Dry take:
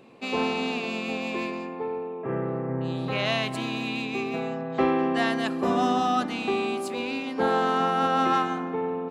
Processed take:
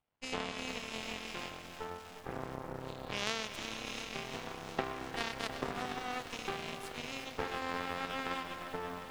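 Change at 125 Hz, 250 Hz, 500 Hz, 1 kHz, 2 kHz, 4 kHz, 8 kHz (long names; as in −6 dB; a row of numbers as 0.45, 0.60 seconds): −13.5, −17.5, −15.0, −14.5, −9.0, −7.0, −1.5 decibels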